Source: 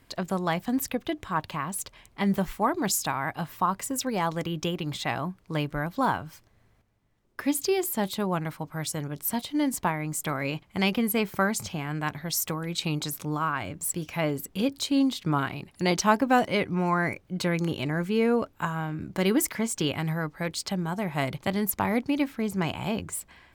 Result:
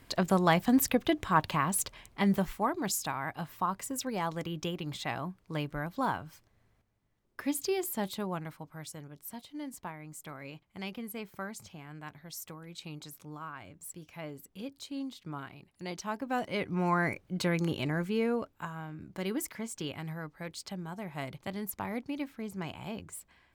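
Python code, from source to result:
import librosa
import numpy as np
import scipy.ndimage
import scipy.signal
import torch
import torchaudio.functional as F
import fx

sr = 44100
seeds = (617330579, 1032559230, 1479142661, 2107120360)

y = fx.gain(x, sr, db=fx.line((1.8, 2.5), (2.75, -6.0), (8.08, -6.0), (9.19, -15.0), (16.09, -15.0), (16.87, -3.0), (17.89, -3.0), (18.68, -10.5)))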